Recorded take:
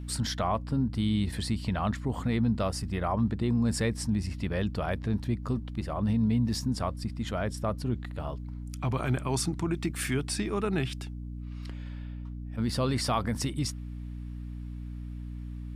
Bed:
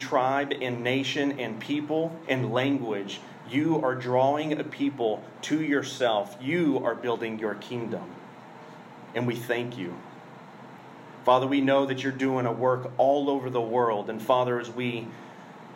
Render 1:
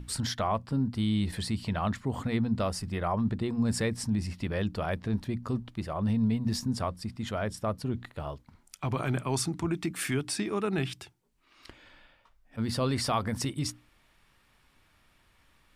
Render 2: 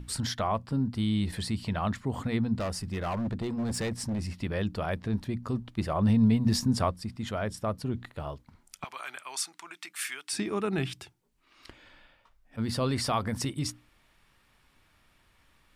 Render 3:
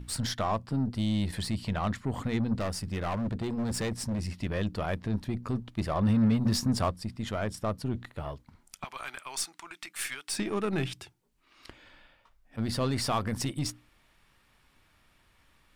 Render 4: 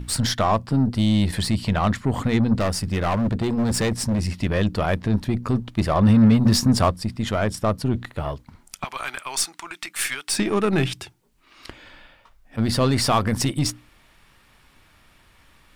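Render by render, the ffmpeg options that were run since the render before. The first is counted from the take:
-af "bandreject=f=60:t=h:w=6,bandreject=f=120:t=h:w=6,bandreject=f=180:t=h:w=6,bandreject=f=240:t=h:w=6,bandreject=f=300:t=h:w=6"
-filter_complex "[0:a]asettb=1/sr,asplit=3[a][b][c];[a]atrim=end=2.554[d];[b]atrim=start=2.55:end=4.42,asetpts=PTS-STARTPTS,afade=t=in:d=0.004:c=qsin,afade=t=out:st=1.866:d=0.004:c=qsin,asoftclip=type=hard:threshold=-27.5dB[e];[c]atrim=start=4.416[f];[d][e]acrossfade=d=0.004:c1=hsin:c2=qsin[g];[g][f]acrossfade=d=0.004:c1=qsin:c2=hsin,asettb=1/sr,asplit=3[h][i][j];[h]atrim=end=8.844[k];[i]atrim=start=8.84:end=10.33,asetpts=PTS-STARTPTS,afade=t=in:d=0.004:c=qsin,afade=t=out:st=1.486:d=0.004:c=qsin,highpass=1.3k[l];[j]atrim=start=10.326[m];[k][l]acrossfade=d=0.004:c1=hsin:c2=qsin[n];[n][m]acrossfade=d=0.004:c1=qsin:c2=hsin,asplit=3[o][p][q];[o]atrim=end=5.782[r];[p]atrim=start=5.778:end=6.912,asetpts=PTS-STARTPTS,volume=4.5dB[s];[q]atrim=start=6.908[t];[r][s]acrossfade=d=0.004:c1=hsin:c2=hsin[u];[u][t]acrossfade=d=0.004:c1=hsin:c2=hsin"
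-af "asoftclip=type=tanh:threshold=-16.5dB,aeval=exprs='0.133*(cos(1*acos(clip(val(0)/0.133,-1,1)))-cos(1*PI/2))+0.00596*(cos(8*acos(clip(val(0)/0.133,-1,1)))-cos(8*PI/2))':c=same"
-af "volume=9.5dB"

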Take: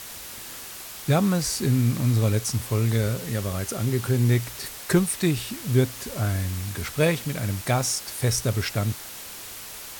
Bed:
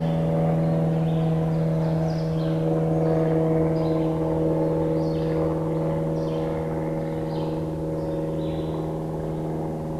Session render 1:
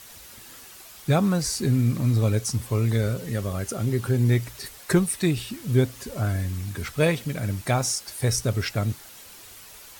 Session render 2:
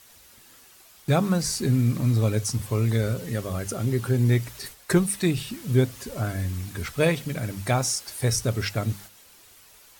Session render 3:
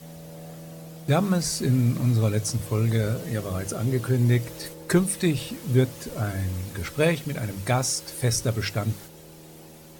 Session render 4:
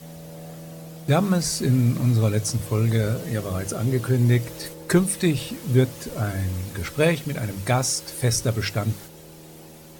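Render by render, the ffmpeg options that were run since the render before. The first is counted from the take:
-af "afftdn=nr=8:nf=-39"
-af "agate=range=-7dB:threshold=-41dB:ratio=16:detection=peak,bandreject=f=50:t=h:w=6,bandreject=f=100:t=h:w=6,bandreject=f=150:t=h:w=6,bandreject=f=200:t=h:w=6"
-filter_complex "[1:a]volume=-19.5dB[a];[0:a][a]amix=inputs=2:normalize=0"
-af "volume=2dB"

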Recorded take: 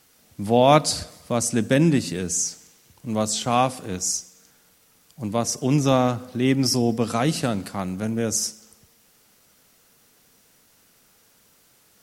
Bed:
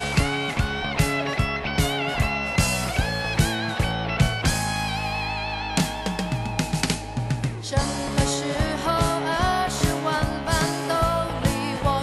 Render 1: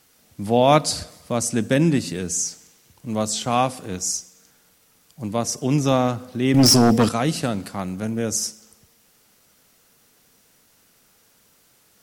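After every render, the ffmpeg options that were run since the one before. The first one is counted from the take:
-filter_complex "[0:a]asettb=1/sr,asplit=3[a][b][c];[a]atrim=end=6.544[d];[b]atrim=start=6.54:end=7.09,asetpts=PTS-STARTPTS,afade=t=in:d=0.004:c=qsin,afade=t=out:st=0.546:d=0.004:c=qsin,aeval=exprs='0.355*sin(PI/2*2.24*val(0)/0.355)':c=same[e];[c]atrim=start=7.086[f];[d][e]acrossfade=d=0.004:c1=hsin:c2=qsin[g];[g][f]acrossfade=d=0.004:c1=qsin:c2=hsin"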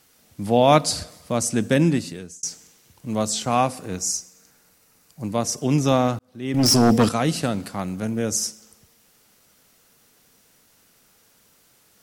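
-filter_complex "[0:a]asettb=1/sr,asplit=3[a][b][c];[a]atrim=end=3.404[d];[b]atrim=start=3.4:end=5.34,asetpts=PTS-STARTPTS,afade=t=in:d=0.004:c=qsin,afade=t=out:st=1.936:d=0.004:c=qsin,equalizer=f=3.3k:w=5.5:g=-7[e];[c]atrim=start=5.336[f];[d][e]acrossfade=d=0.004:c1=hsin:c2=qsin[g];[g][f]acrossfade=d=0.004:c1=qsin:c2=hsin,asplit=3[h][i][j];[h]atrim=end=2.43,asetpts=PTS-STARTPTS,afade=t=out:st=1.84:d=0.59[k];[i]atrim=start=2.43:end=6.19,asetpts=PTS-STARTPTS,afade=t=in:d=0.004:c=hsin,afade=t=out:st=3.756:d=0.004:c=hsin[l];[j]atrim=start=6.19,asetpts=PTS-STARTPTS,afade=t=in:d=0.72[m];[k][l][m]concat=n=3:v=0:a=1"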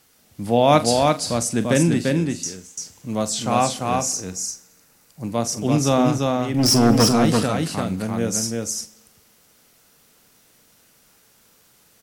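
-filter_complex "[0:a]asplit=2[a][b];[b]adelay=43,volume=-13dB[c];[a][c]amix=inputs=2:normalize=0,aecho=1:1:343:0.708"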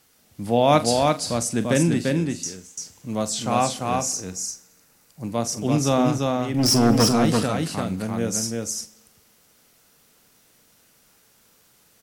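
-af "volume=-2dB"

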